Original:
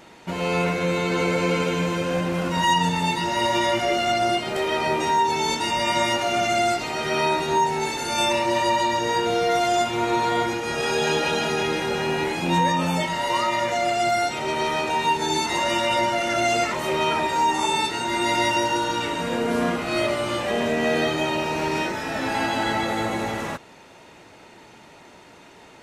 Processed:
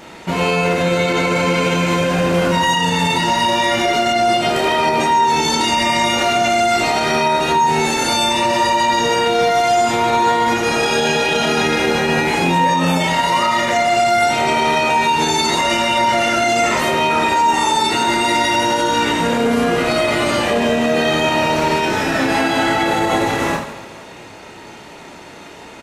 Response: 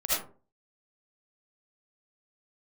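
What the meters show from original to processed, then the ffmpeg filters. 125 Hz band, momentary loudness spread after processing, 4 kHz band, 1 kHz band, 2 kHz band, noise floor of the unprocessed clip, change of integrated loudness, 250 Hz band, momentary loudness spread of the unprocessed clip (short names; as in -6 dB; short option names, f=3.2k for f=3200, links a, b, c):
+6.5 dB, 2 LU, +7.5 dB, +7.5 dB, +7.5 dB, -48 dBFS, +7.0 dB, +7.0 dB, 4 LU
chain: -filter_complex "[0:a]aecho=1:1:30|78|154.8|277.7|474.3:0.631|0.398|0.251|0.158|0.1,asplit=2[a][b];[1:a]atrim=start_sample=2205[c];[b][c]afir=irnorm=-1:irlink=0,volume=-25dB[d];[a][d]amix=inputs=2:normalize=0,alimiter=level_in=14.5dB:limit=-1dB:release=50:level=0:latency=1,volume=-6.5dB"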